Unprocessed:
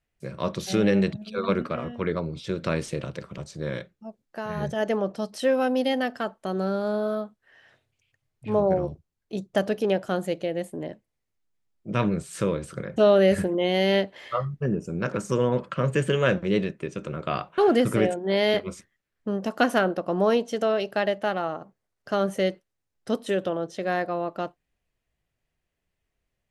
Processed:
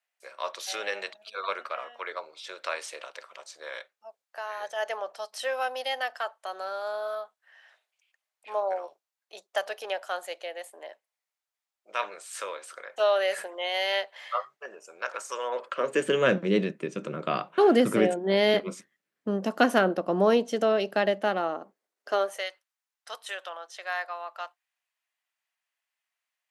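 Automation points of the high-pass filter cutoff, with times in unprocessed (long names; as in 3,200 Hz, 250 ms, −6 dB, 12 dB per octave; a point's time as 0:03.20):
high-pass filter 24 dB per octave
0:15.43 670 Hz
0:16.28 170 Hz
0:21.18 170 Hz
0:22.15 370 Hz
0:22.47 860 Hz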